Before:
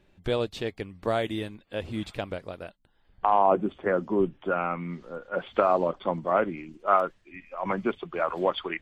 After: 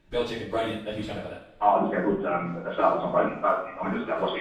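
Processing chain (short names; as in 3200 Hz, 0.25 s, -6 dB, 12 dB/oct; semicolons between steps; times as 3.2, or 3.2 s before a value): plain phase-vocoder stretch 0.5×; two-slope reverb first 0.54 s, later 3.8 s, from -27 dB, DRR -3.5 dB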